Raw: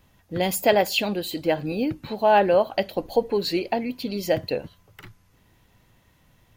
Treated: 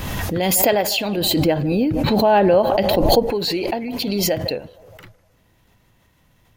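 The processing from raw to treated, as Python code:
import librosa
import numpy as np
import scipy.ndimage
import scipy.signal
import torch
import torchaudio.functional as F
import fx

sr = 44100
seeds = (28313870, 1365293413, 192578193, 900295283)

y = fx.low_shelf(x, sr, hz=430.0, db=8.0, at=(1.17, 3.27))
y = fx.echo_banded(y, sr, ms=154, feedback_pct=61, hz=780.0, wet_db=-20)
y = fx.pre_swell(y, sr, db_per_s=21.0)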